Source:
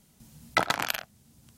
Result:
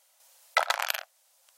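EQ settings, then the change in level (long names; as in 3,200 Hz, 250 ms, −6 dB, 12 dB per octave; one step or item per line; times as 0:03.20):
linear-phase brick-wall high-pass 500 Hz
0.0 dB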